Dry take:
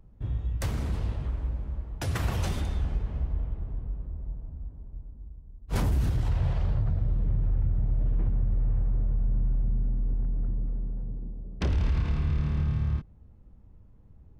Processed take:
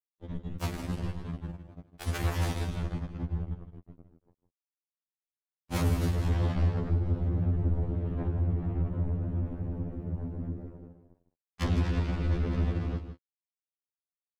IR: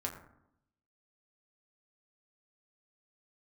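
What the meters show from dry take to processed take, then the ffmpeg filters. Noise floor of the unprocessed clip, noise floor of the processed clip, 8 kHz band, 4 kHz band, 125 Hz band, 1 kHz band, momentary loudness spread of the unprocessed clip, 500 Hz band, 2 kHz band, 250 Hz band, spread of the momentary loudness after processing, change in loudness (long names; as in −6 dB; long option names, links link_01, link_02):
−53 dBFS, below −85 dBFS, can't be measured, +0.5 dB, −1.0 dB, +1.0 dB, 12 LU, +3.5 dB, +1.0 dB, +3.0 dB, 12 LU, −1.5 dB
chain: -af "acrusher=bits=3:mix=0:aa=0.5,aecho=1:1:158:0.299,afftfilt=real='re*2*eq(mod(b,4),0)':imag='im*2*eq(mod(b,4),0)':win_size=2048:overlap=0.75"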